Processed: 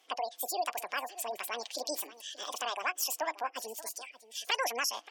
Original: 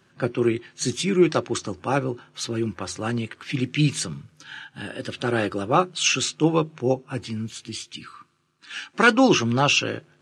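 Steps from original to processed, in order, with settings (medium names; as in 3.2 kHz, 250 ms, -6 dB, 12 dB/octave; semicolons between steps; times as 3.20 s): high-pass 360 Hz 12 dB/octave; spectral gate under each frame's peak -25 dB strong; compression 2:1, threshold -31 dBFS, peak gain reduction 11 dB; delay 1159 ms -16.5 dB; speed mistake 7.5 ips tape played at 15 ips; trim -3.5 dB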